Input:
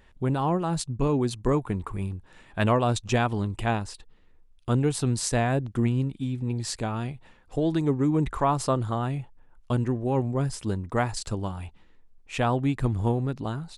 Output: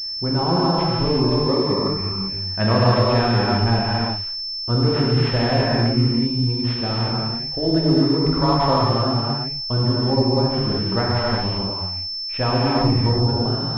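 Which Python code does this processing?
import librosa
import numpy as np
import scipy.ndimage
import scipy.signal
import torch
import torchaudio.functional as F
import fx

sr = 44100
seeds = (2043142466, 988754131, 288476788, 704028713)

y = fx.notch_comb(x, sr, f0_hz=1500.0, at=(1.3, 1.92))
y = fx.rev_gated(y, sr, seeds[0], gate_ms=410, shape='flat', drr_db=-6.0)
y = fx.pwm(y, sr, carrier_hz=5300.0)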